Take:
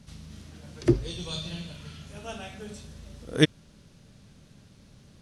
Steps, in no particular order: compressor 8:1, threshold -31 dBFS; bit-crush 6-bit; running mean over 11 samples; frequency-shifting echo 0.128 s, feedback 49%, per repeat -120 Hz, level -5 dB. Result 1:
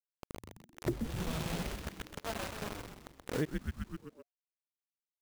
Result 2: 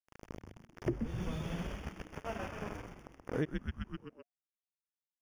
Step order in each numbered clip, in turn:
running mean > bit-crush > frequency-shifting echo > compressor; bit-crush > frequency-shifting echo > compressor > running mean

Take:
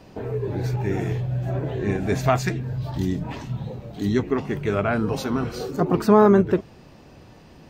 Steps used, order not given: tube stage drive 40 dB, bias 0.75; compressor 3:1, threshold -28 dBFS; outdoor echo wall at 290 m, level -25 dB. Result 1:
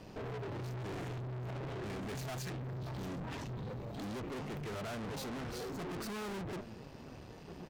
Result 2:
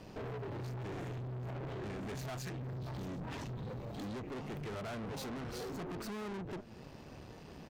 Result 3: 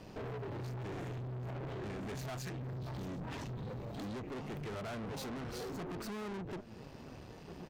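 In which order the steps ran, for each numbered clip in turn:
outdoor echo > tube stage > compressor; compressor > outdoor echo > tube stage; outdoor echo > compressor > tube stage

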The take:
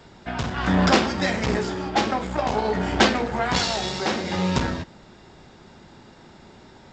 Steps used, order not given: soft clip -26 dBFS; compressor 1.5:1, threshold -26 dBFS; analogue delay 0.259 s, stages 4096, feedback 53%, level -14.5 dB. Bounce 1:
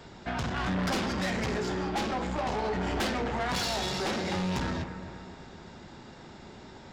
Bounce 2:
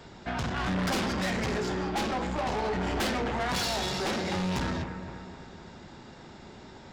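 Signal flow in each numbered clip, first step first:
compressor > analogue delay > soft clip; analogue delay > soft clip > compressor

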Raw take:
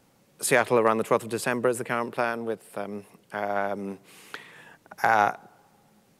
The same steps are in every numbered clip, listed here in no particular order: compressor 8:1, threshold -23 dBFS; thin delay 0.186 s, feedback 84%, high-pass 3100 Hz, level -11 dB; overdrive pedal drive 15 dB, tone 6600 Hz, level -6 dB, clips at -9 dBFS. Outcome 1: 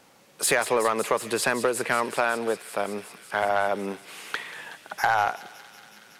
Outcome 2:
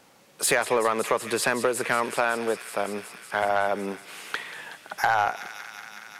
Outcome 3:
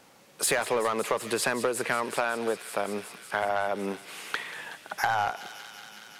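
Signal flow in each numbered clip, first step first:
compressor > overdrive pedal > thin delay; thin delay > compressor > overdrive pedal; overdrive pedal > thin delay > compressor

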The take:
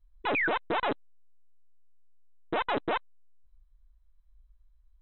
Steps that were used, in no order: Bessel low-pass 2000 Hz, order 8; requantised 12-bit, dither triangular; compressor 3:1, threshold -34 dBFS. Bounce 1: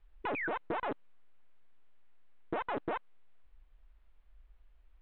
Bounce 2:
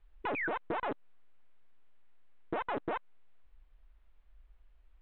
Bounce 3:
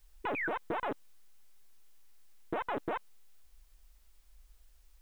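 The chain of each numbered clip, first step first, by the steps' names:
compressor > requantised > Bessel low-pass; requantised > Bessel low-pass > compressor; Bessel low-pass > compressor > requantised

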